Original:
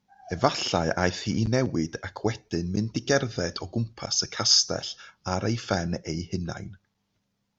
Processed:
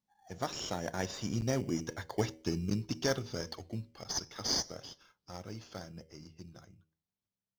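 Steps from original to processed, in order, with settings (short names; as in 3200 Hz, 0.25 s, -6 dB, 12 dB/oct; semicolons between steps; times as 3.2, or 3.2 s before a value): Doppler pass-by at 2.26, 13 m/s, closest 9.8 m; high shelf 5200 Hz +9.5 dB; de-hum 79.85 Hz, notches 7; in parallel at -7 dB: sample-and-hold 17×; on the sum: gain -8 dB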